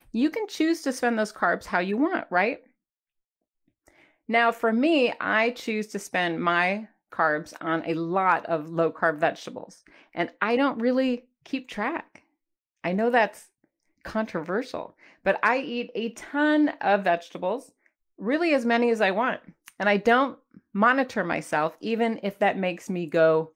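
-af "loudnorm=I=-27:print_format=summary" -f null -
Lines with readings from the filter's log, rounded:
Input Integrated:    -25.1 LUFS
Input True Peak:      -8.7 dBTP
Input LRA:             3.8 LU
Input Threshold:     -35.6 LUFS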